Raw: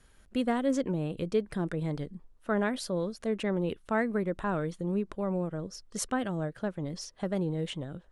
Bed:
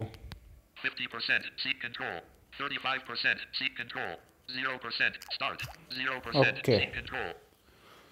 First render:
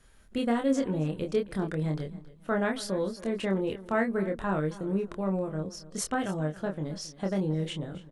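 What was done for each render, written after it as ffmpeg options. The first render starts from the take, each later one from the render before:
-filter_complex "[0:a]asplit=2[a][b];[b]adelay=26,volume=-4dB[c];[a][c]amix=inputs=2:normalize=0,aecho=1:1:272|544:0.126|0.0315"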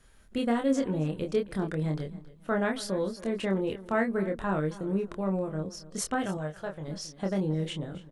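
-filter_complex "[0:a]asettb=1/sr,asplit=3[a][b][c];[a]atrim=end=6.374[d];[b]atrim=start=6.37:end=6.88,asetpts=PTS-STARTPTS,afade=t=in:d=0.004:c=qsin,afade=t=out:st=0.506:d=0.004:c=qsin,equalizer=f=250:t=o:w=0.98:g=-14[e];[c]atrim=start=6.876[f];[d][e]acrossfade=d=0.004:c1=hsin:c2=qsin[g];[g][f]acrossfade=d=0.004:c1=qsin:c2=hsin"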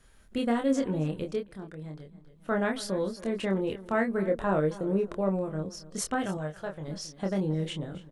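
-filter_complex "[0:a]asettb=1/sr,asplit=3[a][b][c];[a]atrim=end=4.284[d];[b]atrim=start=4.28:end=5.29,asetpts=PTS-STARTPTS,afade=t=in:d=0.004:c=qsin,afade=t=out:st=1.006:d=0.004:c=qsin,equalizer=f=540:t=o:w=1:g=6.5[e];[c]atrim=start=5.286[f];[d][e]acrossfade=d=0.004:c1=hsin:c2=qsin[g];[g][f]acrossfade=d=0.004:c1=qsin:c2=hsin,asplit=3[h][i][j];[h]atrim=end=1.55,asetpts=PTS-STARTPTS,afade=t=out:st=1.15:d=0.4:silence=0.281838[k];[i]atrim=start=1.55:end=2.12,asetpts=PTS-STARTPTS,volume=-11dB[l];[j]atrim=start=2.12,asetpts=PTS-STARTPTS,afade=t=in:d=0.4:silence=0.281838[m];[k][l][m]concat=n=3:v=0:a=1"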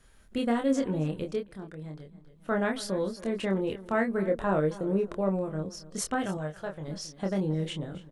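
-af anull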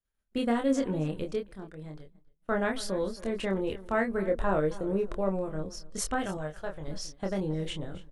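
-af "agate=range=-33dB:threshold=-41dB:ratio=3:detection=peak,asubboost=boost=6.5:cutoff=59"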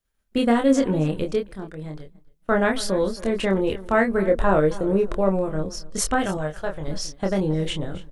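-af "volume=8.5dB"

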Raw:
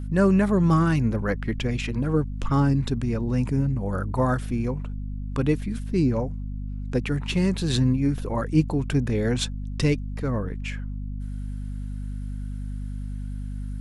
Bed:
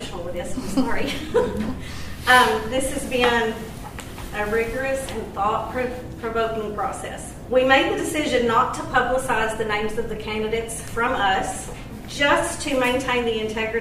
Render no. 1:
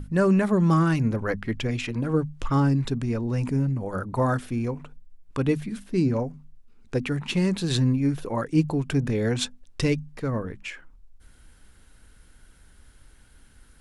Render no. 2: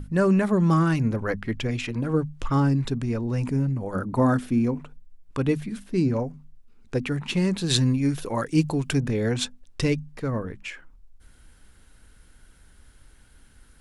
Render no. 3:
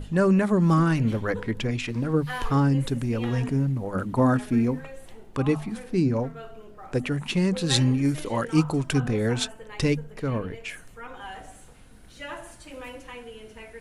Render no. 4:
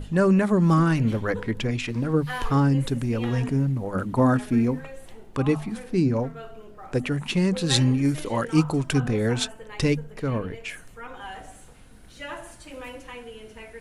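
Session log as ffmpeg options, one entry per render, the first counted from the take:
-af "bandreject=f=50:t=h:w=6,bandreject=f=100:t=h:w=6,bandreject=f=150:t=h:w=6,bandreject=f=200:t=h:w=6,bandreject=f=250:t=h:w=6"
-filter_complex "[0:a]asettb=1/sr,asplit=3[a][b][c];[a]atrim=end=3.954[d];[b]atrim=start=3.95:end=4.8,asetpts=PTS-STARTPTS,afade=t=in:d=0.004:c=qsin,afade=t=out:st=0.846:d=0.004:c=qsin,equalizer=f=250:t=o:w=0.85:g=7.5[e];[c]atrim=start=4.796[f];[d][e]acrossfade=d=0.004:c1=hsin:c2=qsin[g];[g][f]acrossfade=d=0.004:c1=qsin:c2=hsin,asettb=1/sr,asplit=3[h][i][j];[h]atrim=end=7.694[k];[i]atrim=start=7.69:end=8.99,asetpts=PTS-STARTPTS,afade=t=in:d=0.004:c=qsin,afade=t=out:st=1.296:d=0.004:c=qsin,highshelf=f=2.4k:g=8.5[l];[j]atrim=start=8.986[m];[k][l]acrossfade=d=0.004:c1=hsin:c2=qsin[n];[n][m]acrossfade=d=0.004:c1=qsin:c2=hsin"
-filter_complex "[1:a]volume=-19.5dB[a];[0:a][a]amix=inputs=2:normalize=0"
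-af "volume=1dB"

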